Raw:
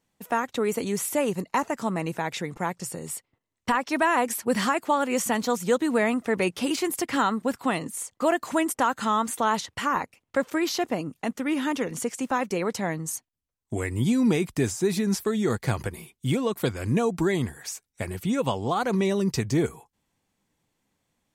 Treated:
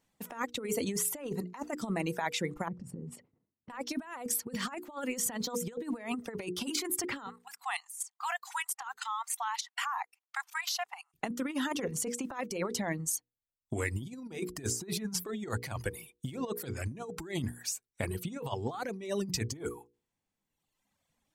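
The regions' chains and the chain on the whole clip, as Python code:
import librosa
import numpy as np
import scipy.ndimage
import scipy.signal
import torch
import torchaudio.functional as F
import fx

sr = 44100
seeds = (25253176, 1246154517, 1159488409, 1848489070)

y = fx.chain(x, sr, fx.transient(attack_db=-8, sustain_db=11),
    fx.bandpass_q(hz=190.0, q=1.2),
    fx.sustainer(db_per_s=120.0), at=(2.68, 3.7))
y = fx.chain(y, sr, fx.brickwall_highpass(low_hz=700.0),
    fx.level_steps(step_db=11), at=(7.26, 11.14))
y = fx.dereverb_blind(y, sr, rt60_s=1.4)
y = fx.hum_notches(y, sr, base_hz=60, count=8)
y = fx.over_compress(y, sr, threshold_db=-30.0, ratio=-0.5)
y = y * 10.0 ** (-4.0 / 20.0)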